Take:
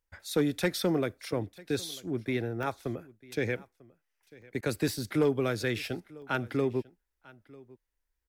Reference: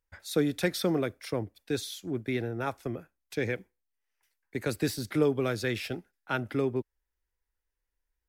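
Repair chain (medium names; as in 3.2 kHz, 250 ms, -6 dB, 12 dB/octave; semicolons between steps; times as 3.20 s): clip repair -18 dBFS; interpolate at 2.63/4.42/4.88/6.22 s, 1.5 ms; interpolate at 4.61 s, 16 ms; inverse comb 946 ms -22.5 dB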